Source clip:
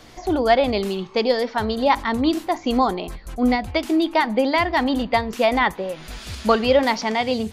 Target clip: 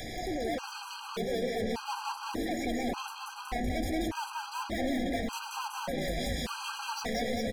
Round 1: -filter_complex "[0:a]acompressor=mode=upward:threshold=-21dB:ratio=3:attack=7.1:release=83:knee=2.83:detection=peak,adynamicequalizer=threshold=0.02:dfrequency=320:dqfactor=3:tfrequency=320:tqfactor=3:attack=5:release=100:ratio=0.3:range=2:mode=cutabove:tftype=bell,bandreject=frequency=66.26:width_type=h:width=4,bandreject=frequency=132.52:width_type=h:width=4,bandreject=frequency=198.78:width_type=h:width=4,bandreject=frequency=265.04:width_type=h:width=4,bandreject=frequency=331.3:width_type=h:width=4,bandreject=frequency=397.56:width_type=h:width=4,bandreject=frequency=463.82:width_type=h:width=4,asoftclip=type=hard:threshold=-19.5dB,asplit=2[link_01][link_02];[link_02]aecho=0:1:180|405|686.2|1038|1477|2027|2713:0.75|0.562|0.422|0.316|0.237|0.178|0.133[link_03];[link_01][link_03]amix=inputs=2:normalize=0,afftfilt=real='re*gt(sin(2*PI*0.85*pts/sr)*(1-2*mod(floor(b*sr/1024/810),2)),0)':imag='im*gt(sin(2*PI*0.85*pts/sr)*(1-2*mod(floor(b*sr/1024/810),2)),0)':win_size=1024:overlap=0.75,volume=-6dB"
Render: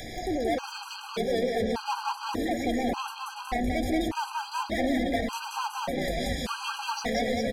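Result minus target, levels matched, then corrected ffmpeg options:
hard clipping: distortion −4 dB
-filter_complex "[0:a]acompressor=mode=upward:threshold=-21dB:ratio=3:attack=7.1:release=83:knee=2.83:detection=peak,adynamicequalizer=threshold=0.02:dfrequency=320:dqfactor=3:tfrequency=320:tqfactor=3:attack=5:release=100:ratio=0.3:range=2:mode=cutabove:tftype=bell,bandreject=frequency=66.26:width_type=h:width=4,bandreject=frequency=132.52:width_type=h:width=4,bandreject=frequency=198.78:width_type=h:width=4,bandreject=frequency=265.04:width_type=h:width=4,bandreject=frequency=331.3:width_type=h:width=4,bandreject=frequency=397.56:width_type=h:width=4,bandreject=frequency=463.82:width_type=h:width=4,asoftclip=type=hard:threshold=-26.5dB,asplit=2[link_01][link_02];[link_02]aecho=0:1:180|405|686.2|1038|1477|2027|2713:0.75|0.562|0.422|0.316|0.237|0.178|0.133[link_03];[link_01][link_03]amix=inputs=2:normalize=0,afftfilt=real='re*gt(sin(2*PI*0.85*pts/sr)*(1-2*mod(floor(b*sr/1024/810),2)),0)':imag='im*gt(sin(2*PI*0.85*pts/sr)*(1-2*mod(floor(b*sr/1024/810),2)),0)':win_size=1024:overlap=0.75,volume=-6dB"

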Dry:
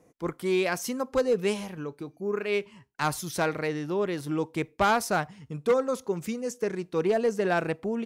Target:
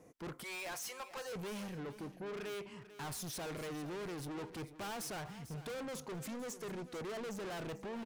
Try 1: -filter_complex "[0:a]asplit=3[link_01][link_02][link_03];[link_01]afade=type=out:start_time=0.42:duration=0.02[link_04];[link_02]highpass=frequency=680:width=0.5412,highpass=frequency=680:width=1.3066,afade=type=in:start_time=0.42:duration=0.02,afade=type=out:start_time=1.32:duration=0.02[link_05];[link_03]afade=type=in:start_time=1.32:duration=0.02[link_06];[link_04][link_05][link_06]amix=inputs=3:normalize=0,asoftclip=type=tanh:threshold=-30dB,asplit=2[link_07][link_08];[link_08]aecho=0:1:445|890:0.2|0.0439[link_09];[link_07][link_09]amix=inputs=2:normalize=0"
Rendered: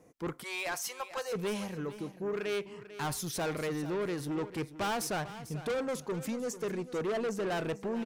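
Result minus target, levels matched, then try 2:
soft clipping: distortion −5 dB
-filter_complex "[0:a]asplit=3[link_01][link_02][link_03];[link_01]afade=type=out:start_time=0.42:duration=0.02[link_04];[link_02]highpass=frequency=680:width=0.5412,highpass=frequency=680:width=1.3066,afade=type=in:start_time=0.42:duration=0.02,afade=type=out:start_time=1.32:duration=0.02[link_05];[link_03]afade=type=in:start_time=1.32:duration=0.02[link_06];[link_04][link_05][link_06]amix=inputs=3:normalize=0,asoftclip=type=tanh:threshold=-41.5dB,asplit=2[link_07][link_08];[link_08]aecho=0:1:445|890:0.2|0.0439[link_09];[link_07][link_09]amix=inputs=2:normalize=0"

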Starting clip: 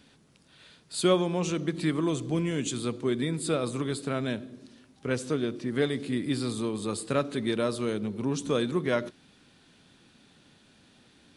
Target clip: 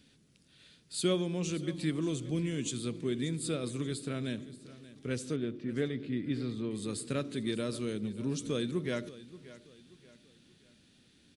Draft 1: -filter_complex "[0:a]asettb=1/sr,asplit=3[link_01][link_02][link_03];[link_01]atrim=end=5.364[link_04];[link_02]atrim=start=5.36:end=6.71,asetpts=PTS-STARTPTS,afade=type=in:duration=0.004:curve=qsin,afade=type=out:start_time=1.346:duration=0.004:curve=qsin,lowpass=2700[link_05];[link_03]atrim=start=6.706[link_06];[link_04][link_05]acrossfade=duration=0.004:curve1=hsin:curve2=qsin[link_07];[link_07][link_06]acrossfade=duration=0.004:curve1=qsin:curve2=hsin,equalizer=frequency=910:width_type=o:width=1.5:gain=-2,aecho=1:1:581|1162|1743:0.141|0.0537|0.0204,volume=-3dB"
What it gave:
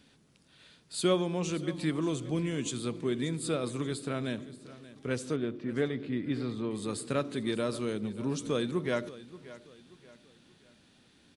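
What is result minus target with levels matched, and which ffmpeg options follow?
1,000 Hz band +5.5 dB
-filter_complex "[0:a]asettb=1/sr,asplit=3[link_01][link_02][link_03];[link_01]atrim=end=5.364[link_04];[link_02]atrim=start=5.36:end=6.71,asetpts=PTS-STARTPTS,afade=type=in:duration=0.004:curve=qsin,afade=type=out:start_time=1.346:duration=0.004:curve=qsin,lowpass=2700[link_05];[link_03]atrim=start=6.706[link_06];[link_04][link_05]acrossfade=duration=0.004:curve1=hsin:curve2=qsin[link_07];[link_07][link_06]acrossfade=duration=0.004:curve1=qsin:curve2=hsin,equalizer=frequency=910:width_type=o:width=1.5:gain=-12,aecho=1:1:581|1162|1743:0.141|0.0537|0.0204,volume=-3dB"

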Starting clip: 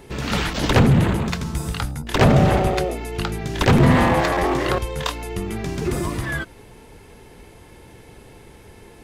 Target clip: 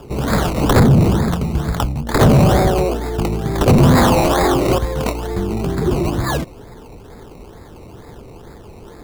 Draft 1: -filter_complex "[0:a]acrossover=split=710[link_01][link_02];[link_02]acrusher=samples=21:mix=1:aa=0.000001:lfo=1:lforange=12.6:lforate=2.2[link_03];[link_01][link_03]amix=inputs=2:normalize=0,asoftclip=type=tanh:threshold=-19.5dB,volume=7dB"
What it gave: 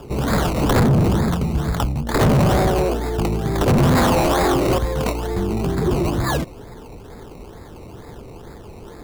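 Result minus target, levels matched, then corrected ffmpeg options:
soft clipping: distortion +7 dB
-filter_complex "[0:a]acrossover=split=710[link_01][link_02];[link_02]acrusher=samples=21:mix=1:aa=0.000001:lfo=1:lforange=12.6:lforate=2.2[link_03];[link_01][link_03]amix=inputs=2:normalize=0,asoftclip=type=tanh:threshold=-12.5dB,volume=7dB"

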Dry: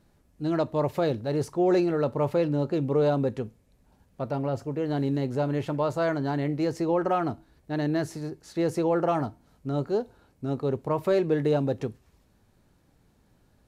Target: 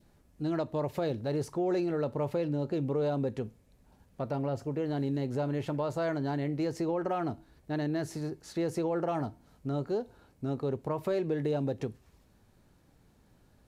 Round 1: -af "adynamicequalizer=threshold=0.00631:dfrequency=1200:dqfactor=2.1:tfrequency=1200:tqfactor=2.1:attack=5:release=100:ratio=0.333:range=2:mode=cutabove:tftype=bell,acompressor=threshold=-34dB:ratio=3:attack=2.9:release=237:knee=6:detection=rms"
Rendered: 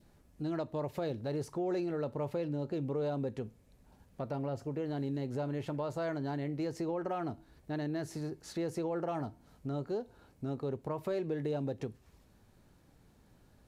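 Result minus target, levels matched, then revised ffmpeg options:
downward compressor: peak gain reduction +4.5 dB
-af "adynamicequalizer=threshold=0.00631:dfrequency=1200:dqfactor=2.1:tfrequency=1200:tqfactor=2.1:attack=5:release=100:ratio=0.333:range=2:mode=cutabove:tftype=bell,acompressor=threshold=-27.5dB:ratio=3:attack=2.9:release=237:knee=6:detection=rms"

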